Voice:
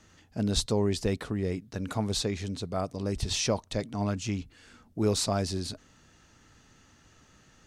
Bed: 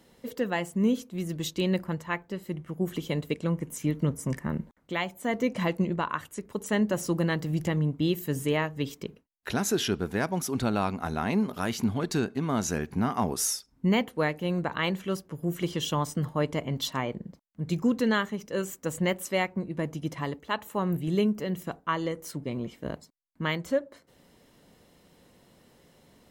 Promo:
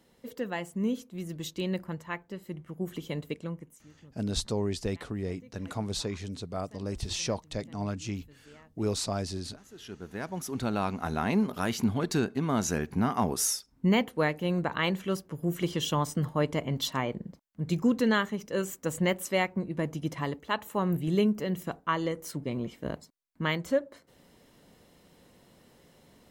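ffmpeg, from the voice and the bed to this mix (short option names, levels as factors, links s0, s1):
-filter_complex "[0:a]adelay=3800,volume=0.668[s0];[1:a]volume=14.1,afade=t=out:st=3.29:d=0.55:silence=0.0707946,afade=t=in:st=9.7:d=1.46:silence=0.0398107[s1];[s0][s1]amix=inputs=2:normalize=0"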